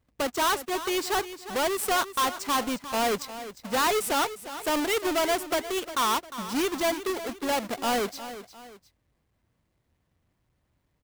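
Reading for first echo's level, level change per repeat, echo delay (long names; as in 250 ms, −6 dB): −13.0 dB, −8.0 dB, 354 ms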